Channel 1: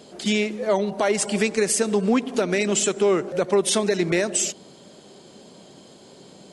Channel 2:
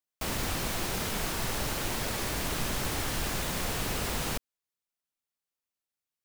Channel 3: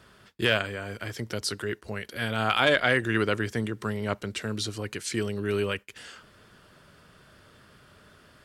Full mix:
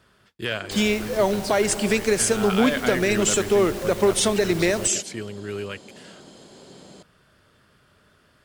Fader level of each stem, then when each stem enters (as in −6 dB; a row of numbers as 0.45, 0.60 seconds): +0.5, −5.0, −4.0 decibels; 0.50, 0.50, 0.00 seconds